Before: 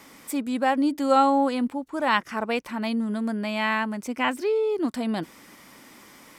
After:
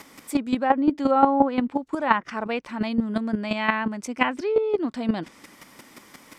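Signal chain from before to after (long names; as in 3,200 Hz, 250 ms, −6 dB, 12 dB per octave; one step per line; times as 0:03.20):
treble cut that deepens with the level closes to 1,600 Hz, closed at −17.5 dBFS
square-wave tremolo 5.7 Hz, depth 65%, duty 10%
level +8 dB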